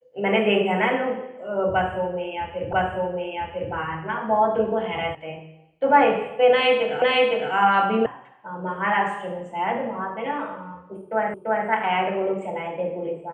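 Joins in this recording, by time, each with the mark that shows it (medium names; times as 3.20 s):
2.73 s: repeat of the last 1 s
5.15 s: sound stops dead
7.02 s: repeat of the last 0.51 s
8.06 s: sound stops dead
11.34 s: repeat of the last 0.34 s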